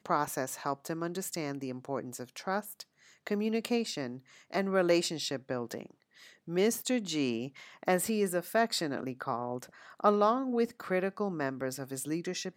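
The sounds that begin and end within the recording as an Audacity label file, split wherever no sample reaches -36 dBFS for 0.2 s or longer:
3.270000	4.160000	sound
4.530000	5.860000	sound
6.480000	7.470000	sound
7.830000	9.640000	sound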